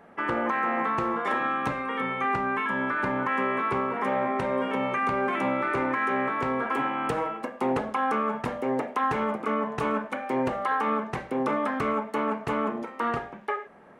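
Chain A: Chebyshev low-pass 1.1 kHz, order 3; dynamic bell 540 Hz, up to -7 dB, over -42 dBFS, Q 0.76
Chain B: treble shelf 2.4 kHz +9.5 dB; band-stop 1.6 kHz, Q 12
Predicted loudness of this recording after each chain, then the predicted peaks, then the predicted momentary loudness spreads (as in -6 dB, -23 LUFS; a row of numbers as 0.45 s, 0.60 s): -33.5 LUFS, -26.5 LUFS; -19.5 dBFS, -13.0 dBFS; 4 LU, 4 LU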